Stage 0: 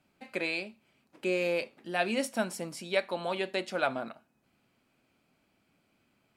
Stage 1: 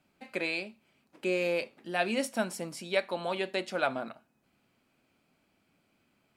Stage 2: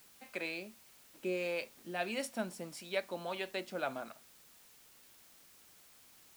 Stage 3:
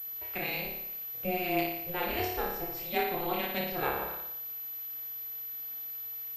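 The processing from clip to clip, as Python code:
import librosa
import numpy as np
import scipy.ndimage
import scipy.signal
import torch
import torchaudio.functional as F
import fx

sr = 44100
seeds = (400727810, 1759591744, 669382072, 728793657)

y1 = fx.hum_notches(x, sr, base_hz=60, count=2)
y2 = fx.harmonic_tremolo(y1, sr, hz=1.6, depth_pct=50, crossover_hz=560.0)
y2 = fx.dmg_noise_colour(y2, sr, seeds[0], colour='white', level_db=-57.0)
y2 = F.gain(torch.from_numpy(y2), -4.5).numpy()
y3 = fx.room_flutter(y2, sr, wall_m=5.0, rt60_s=0.79)
y3 = y3 * np.sin(2.0 * np.pi * 180.0 * np.arange(len(y3)) / sr)
y3 = fx.pwm(y3, sr, carrier_hz=12000.0)
y3 = F.gain(torch.from_numpy(y3), 5.0).numpy()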